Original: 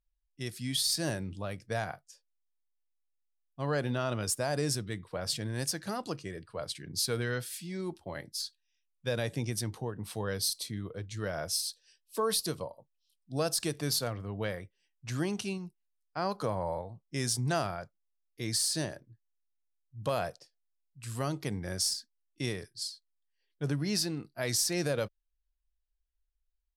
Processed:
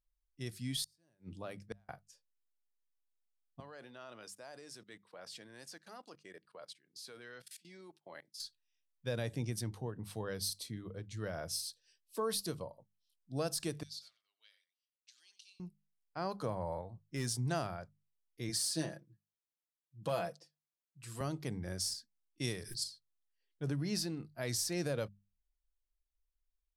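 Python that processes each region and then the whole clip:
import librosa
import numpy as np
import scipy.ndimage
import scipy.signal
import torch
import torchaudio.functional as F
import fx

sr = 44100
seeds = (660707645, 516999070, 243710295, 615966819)

y = fx.chain(x, sr, fx.highpass(hz=110.0, slope=12),
    fx.gate_flip(shuts_db=-23.0, range_db=-37), at=(0.83, 1.89))
y = fx.chain(y, sr, fx.highpass(hz=110.0, slope=12),
    fx.level_steps(step_db=21),
    fx.weighting(curve='A'), at=(3.6, 8.4))
y = fx.chain(y, sr, fx.ladder_bandpass(hz=4700.0, resonance_pct=40),
    fx.echo_single(ms=92, db=-13.0), at=(13.83, 15.6))
y = fx.chain(y, sr, fx.peak_eq(hz=1500.0, db=3.5, octaves=1.2),
    fx.clip_hard(threshold_db=-24.0), at=(16.71, 17.27))
y = fx.chain(y, sr, fx.highpass(hz=150.0, slope=12),
    fx.comb(ms=6.0, depth=0.68), at=(18.49, 21.21))
y = fx.chain(y, sr, fx.high_shelf(hz=3300.0, db=9.0),
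    fx.pre_swell(db_per_s=100.0), at=(22.41, 22.84))
y = fx.low_shelf(y, sr, hz=380.0, db=4.5)
y = fx.hum_notches(y, sr, base_hz=50, count=4)
y = y * librosa.db_to_amplitude(-7.0)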